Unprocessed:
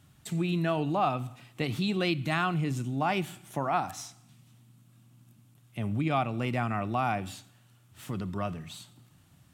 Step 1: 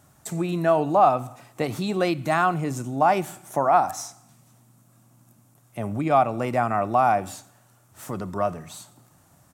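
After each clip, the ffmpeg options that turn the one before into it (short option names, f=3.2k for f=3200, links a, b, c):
-af "firequalizer=gain_entry='entry(130,0);entry(600,12);entry(3000,-4);entry(6000,8)':delay=0.05:min_phase=1"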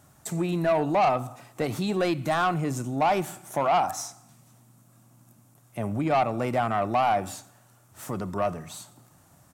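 -af "asoftclip=type=tanh:threshold=-17dB"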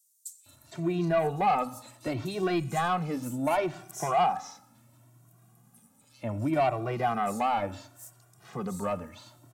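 -filter_complex "[0:a]acrossover=split=5300[a][b];[a]adelay=460[c];[c][b]amix=inputs=2:normalize=0,asplit=2[d][e];[e]adelay=2,afreqshift=0.69[f];[d][f]amix=inputs=2:normalize=1"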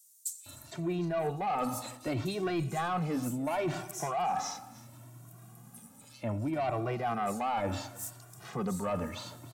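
-af "areverse,acompressor=threshold=-37dB:ratio=5,areverse,asoftclip=type=tanh:threshold=-30dB,aecho=1:1:305:0.0944,volume=7.5dB"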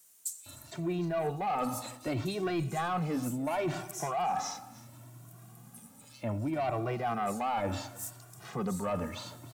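-af "acrusher=bits=10:mix=0:aa=0.000001"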